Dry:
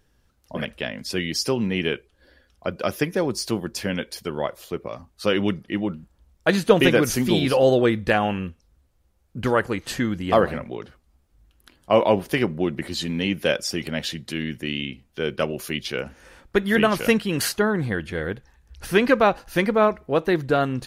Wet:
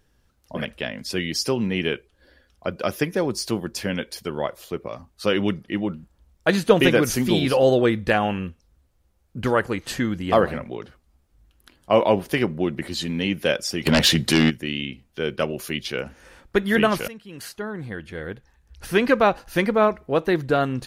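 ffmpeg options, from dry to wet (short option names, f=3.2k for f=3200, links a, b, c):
-filter_complex "[0:a]asplit=3[a][b][c];[a]afade=t=out:st=13.85:d=0.02[d];[b]aeval=exprs='0.316*sin(PI/2*3.16*val(0)/0.316)':c=same,afade=t=in:st=13.85:d=0.02,afade=t=out:st=14.49:d=0.02[e];[c]afade=t=in:st=14.49:d=0.02[f];[d][e][f]amix=inputs=3:normalize=0,asplit=2[g][h];[g]atrim=end=17.08,asetpts=PTS-STARTPTS,afade=t=out:st=17.076:d=0.004:c=hsin:silence=0.0668344[i];[h]atrim=start=17.08,asetpts=PTS-STARTPTS,afade=t=in:d=2.17:silence=0.0668344[j];[i][j]concat=n=2:v=0:a=1"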